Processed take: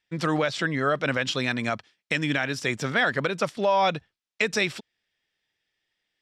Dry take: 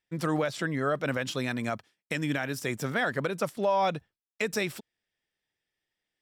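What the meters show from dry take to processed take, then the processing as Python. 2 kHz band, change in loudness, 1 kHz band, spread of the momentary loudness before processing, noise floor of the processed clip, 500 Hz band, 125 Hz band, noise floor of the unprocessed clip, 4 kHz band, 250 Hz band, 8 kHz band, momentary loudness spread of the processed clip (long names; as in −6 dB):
+6.5 dB, +4.5 dB, +4.5 dB, 8 LU, below −85 dBFS, +3.0 dB, +2.5 dB, below −85 dBFS, +8.0 dB, +2.5 dB, +3.0 dB, 6 LU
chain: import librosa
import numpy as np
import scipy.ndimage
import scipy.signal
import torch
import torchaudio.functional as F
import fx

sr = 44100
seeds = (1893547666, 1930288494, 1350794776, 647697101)

y = scipy.signal.sosfilt(scipy.signal.butter(2, 4600.0, 'lowpass', fs=sr, output='sos'), x)
y = fx.high_shelf(y, sr, hz=2000.0, db=9.5)
y = y * librosa.db_to_amplitude(2.5)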